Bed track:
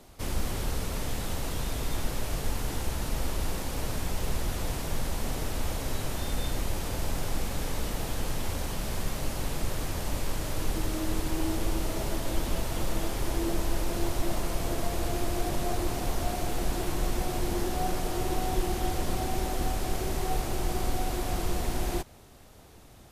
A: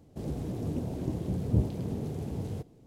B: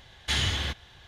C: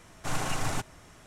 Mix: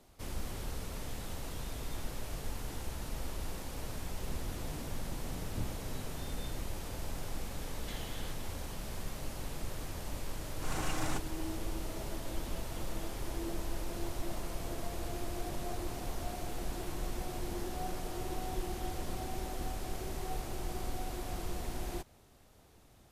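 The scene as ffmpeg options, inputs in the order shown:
-filter_complex "[0:a]volume=-9dB[a];[2:a]acompressor=threshold=-34dB:ratio=6:attack=3.2:release=140:knee=1:detection=peak[b];[3:a]dynaudnorm=f=200:g=3:m=12dB[c];[1:a]atrim=end=2.86,asetpts=PTS-STARTPTS,volume=-15dB,afade=t=in:d=0.004:c=hsin,afade=t=out:st=2.856:d=0.004:c=hsin,adelay=4040[d];[b]atrim=end=1.07,asetpts=PTS-STARTPTS,volume=-10.5dB,afade=t=in:d=0.004:c=hsin,afade=t=out:st=1.066:d=0.004:c=hsin,adelay=7600[e];[c]atrim=end=1.26,asetpts=PTS-STARTPTS,volume=-17dB,afade=t=in:d=0.004:c=hsin,afade=t=out:st=1.256:d=0.004:c=hsin,adelay=10370[f];[a][d][e][f]amix=inputs=4:normalize=0"

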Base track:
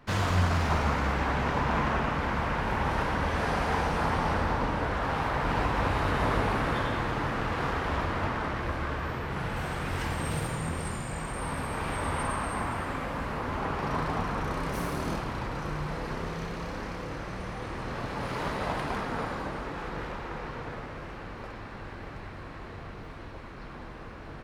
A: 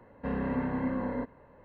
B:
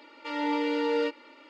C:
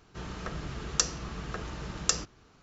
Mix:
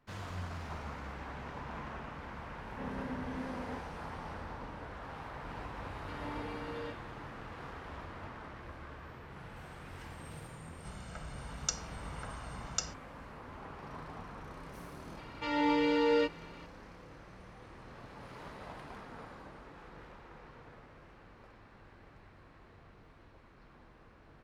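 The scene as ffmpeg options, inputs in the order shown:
-filter_complex "[2:a]asplit=2[a][b];[0:a]volume=-16dB[c];[3:a]aecho=1:1:1.4:0.87[d];[1:a]atrim=end=1.64,asetpts=PTS-STARTPTS,volume=-10dB,afade=t=in:d=0.004:c=hsin,afade=t=out:st=1.636:d=0.004:c=hsin,adelay=2540[e];[a]atrim=end=1.49,asetpts=PTS-STARTPTS,volume=-16.5dB,afade=t=in:d=0.004:c=hsin,afade=t=out:st=1.486:d=0.004:c=hsin,adelay=5830[f];[d]atrim=end=2.62,asetpts=PTS-STARTPTS,volume=-11.5dB,afade=t=in:d=0.004:c=hsin,afade=t=out:st=2.616:d=0.004:c=hsin,adelay=10690[g];[b]atrim=end=1.49,asetpts=PTS-STARTPTS,volume=-1dB,afade=t=in:d=0.004:c=hsin,afade=t=out:st=1.486:d=0.004:c=hsin,adelay=15170[h];[c][e][f][g][h]amix=inputs=5:normalize=0"

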